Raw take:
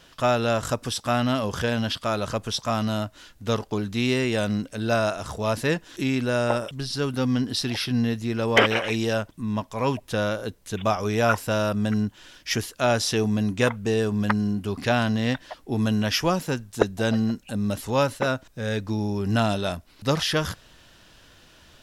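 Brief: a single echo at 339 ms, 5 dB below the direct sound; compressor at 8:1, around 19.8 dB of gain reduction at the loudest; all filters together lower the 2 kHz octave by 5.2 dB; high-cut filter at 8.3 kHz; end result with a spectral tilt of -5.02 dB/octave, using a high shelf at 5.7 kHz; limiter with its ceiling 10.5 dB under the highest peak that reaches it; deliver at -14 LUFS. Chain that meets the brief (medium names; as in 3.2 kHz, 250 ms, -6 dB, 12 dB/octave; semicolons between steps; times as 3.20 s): low-pass 8.3 kHz; peaking EQ 2 kHz -8.5 dB; treble shelf 5.7 kHz +8.5 dB; compression 8:1, threshold -36 dBFS; peak limiter -34 dBFS; delay 339 ms -5 dB; trim +28 dB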